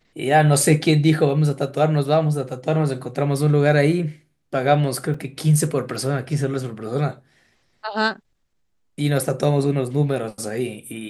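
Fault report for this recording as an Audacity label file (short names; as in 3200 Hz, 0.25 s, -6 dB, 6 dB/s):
5.140000	5.140000	gap 3.8 ms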